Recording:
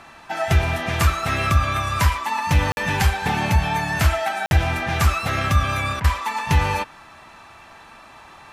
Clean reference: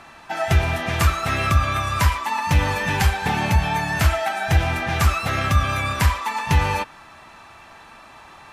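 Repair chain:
repair the gap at 0:02.72/0:04.46, 51 ms
repair the gap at 0:06.00, 41 ms

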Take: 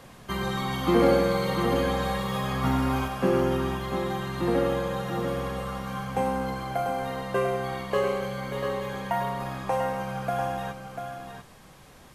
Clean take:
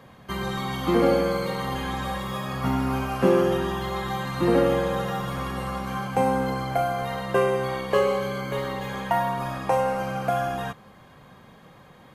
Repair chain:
clipped peaks rebuilt −11.5 dBFS
downward expander −33 dBFS, range −21 dB
echo removal 693 ms −7 dB
level 0 dB, from 0:03.08 +4.5 dB

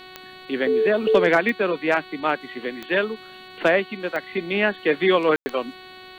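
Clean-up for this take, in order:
clipped peaks rebuilt −7.5 dBFS
click removal
hum removal 371.3 Hz, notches 12
ambience match 0:05.36–0:05.46

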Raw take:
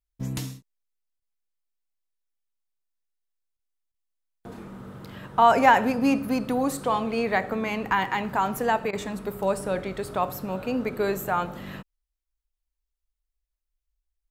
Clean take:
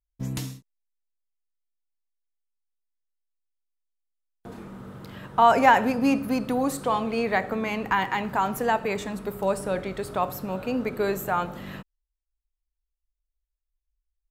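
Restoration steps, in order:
repair the gap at 0:01.20/0:03.57/0:03.92/0:08.91, 20 ms

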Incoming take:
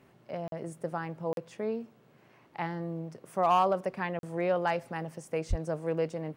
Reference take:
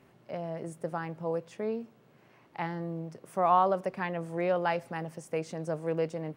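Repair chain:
clipped peaks rebuilt −17 dBFS
0:05.49–0:05.61: high-pass filter 140 Hz 24 dB per octave
repair the gap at 0:00.48/0:01.33/0:04.19, 42 ms

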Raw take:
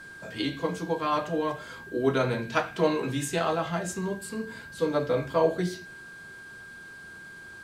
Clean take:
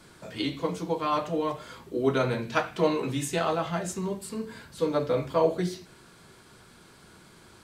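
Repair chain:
notch filter 1,600 Hz, Q 30

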